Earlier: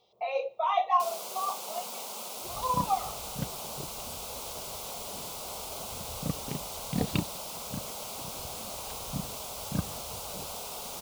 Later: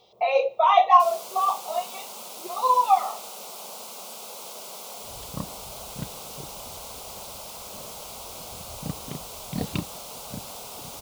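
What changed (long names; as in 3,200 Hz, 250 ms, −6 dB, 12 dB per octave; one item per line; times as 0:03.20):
speech +9.5 dB
second sound: entry +2.60 s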